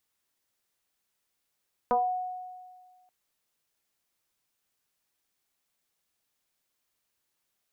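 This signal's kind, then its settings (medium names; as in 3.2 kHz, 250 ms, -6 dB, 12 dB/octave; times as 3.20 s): FM tone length 1.18 s, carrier 734 Hz, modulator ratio 0.34, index 1.8, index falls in 0.33 s exponential, decay 1.70 s, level -20 dB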